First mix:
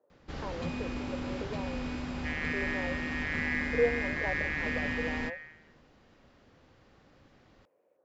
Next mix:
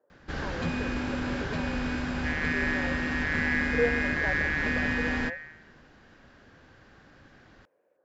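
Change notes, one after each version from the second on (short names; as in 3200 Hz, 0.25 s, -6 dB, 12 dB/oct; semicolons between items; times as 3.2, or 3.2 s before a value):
first sound +5.0 dB; master: add bell 1600 Hz +10.5 dB 0.28 oct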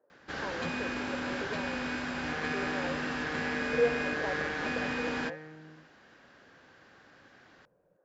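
first sound: add HPF 390 Hz 6 dB/oct; second sound: remove resonant high-pass 1900 Hz, resonance Q 4.6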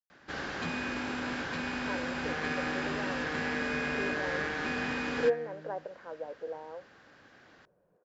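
speech: entry +1.45 s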